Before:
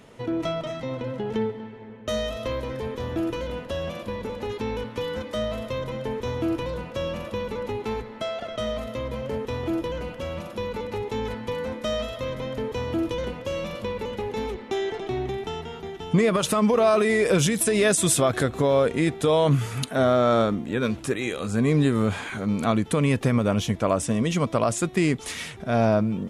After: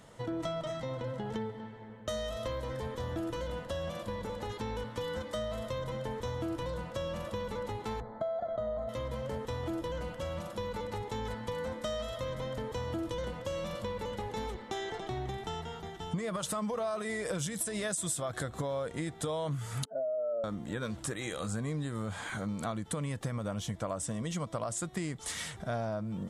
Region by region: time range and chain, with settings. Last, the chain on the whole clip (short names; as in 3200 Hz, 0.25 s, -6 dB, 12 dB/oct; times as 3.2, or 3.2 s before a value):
8–8.89 running mean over 16 samples + bell 700 Hz +9.5 dB 0.4 oct
19.85–20.44 spectral contrast raised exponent 2.4 + band-pass 540 Hz, Q 2.5
whole clip: thirty-one-band EQ 250 Hz -8 dB, 400 Hz -9 dB, 2500 Hz -9 dB, 8000 Hz +6 dB; compressor 6:1, threshold -29 dBFS; gain -3 dB